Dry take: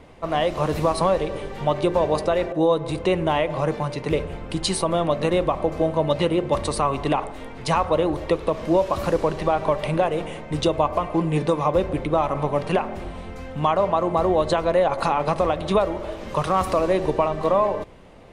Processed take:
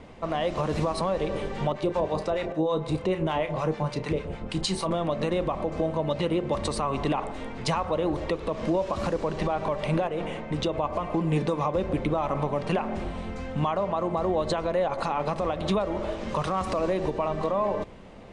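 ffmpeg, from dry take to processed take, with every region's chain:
-filter_complex "[0:a]asettb=1/sr,asplit=3[a][b][c];[a]atrim=end=1.724[d];[b]atrim=start=1.72:end=4.91,asetpts=PTS-STARTPTS,afade=t=in:d=0.004:c=qsin,afade=t=out:st=3.186:d=0.004:c=qsin,acrossover=split=910[e][f];[e]aeval=exprs='val(0)*(1-0.7/2+0.7/2*cos(2*PI*6.6*n/s))':c=same[g];[f]aeval=exprs='val(0)*(1-0.7/2-0.7/2*cos(2*PI*6.6*n/s))':c=same[h];[g][h]amix=inputs=2:normalize=0,asplit=2[i][j];[j]adelay=32,volume=-11dB[k];[i][k]amix=inputs=2:normalize=0,atrim=end_sample=140679[l];[c]atrim=start=4.906[m];[d][l]acrossfade=d=0.004:c1=hsin:c2=qsin[n];[n][m]acrossfade=d=0.004:c1=qsin:c2=hsin,asettb=1/sr,asplit=3[o][p][q];[o]atrim=end=10.074[r];[p]atrim=start=10.07:end=10.84,asetpts=PTS-STARTPTS,afade=t=in:d=0.004:c=qsin,afade=t=out:st=0.766:d=0.004:c=qsin,bass=f=250:g=-2,treble=f=4k:g=-6,acompressor=threshold=-25dB:ratio=2.5:attack=3.2:release=140:knee=1:detection=peak[s];[q]atrim=start=10.836[t];[r][s]acrossfade=d=0.004:c1=hsin:c2=qsin[u];[u][t]acrossfade=d=0.004:c1=qsin:c2=hsin,lowpass=f=8.8k:w=0.5412,lowpass=f=8.8k:w=1.3066,equalizer=f=210:t=o:w=0.31:g=6,alimiter=limit=-16.5dB:level=0:latency=1:release=166"

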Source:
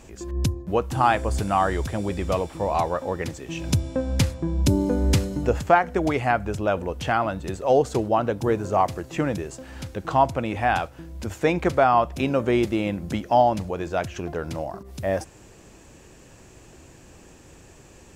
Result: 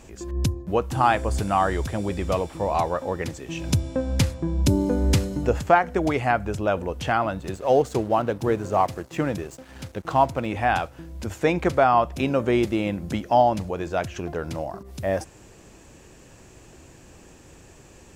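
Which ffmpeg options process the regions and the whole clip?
-filter_complex "[0:a]asettb=1/sr,asplit=3[a][b][c];[a]atrim=end=7.404[d];[b]atrim=start=7.4:end=10.46,asetpts=PTS-STARTPTS,afade=t=in:d=0.004:c=qsin,afade=t=out:st=3.056:d=0.004:c=qsin,aeval=exprs='sgn(val(0))*max(abs(val(0))-0.00562,0)':c=same,highpass=44[e];[c]atrim=start=10.456[f];[d][e]acrossfade=d=0.004:c1=hsin:c2=qsin[g];[g][f]acrossfade=d=0.004:c1=qsin:c2=hsin"

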